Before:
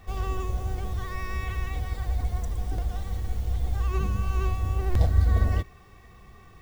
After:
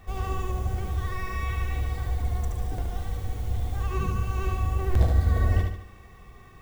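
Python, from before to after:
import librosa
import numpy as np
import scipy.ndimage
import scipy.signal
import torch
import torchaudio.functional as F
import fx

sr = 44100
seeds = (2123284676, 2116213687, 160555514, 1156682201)

y = fx.peak_eq(x, sr, hz=4800.0, db=-3.0, octaves=0.77)
y = fx.echo_feedback(y, sr, ms=73, feedback_pct=45, wet_db=-4)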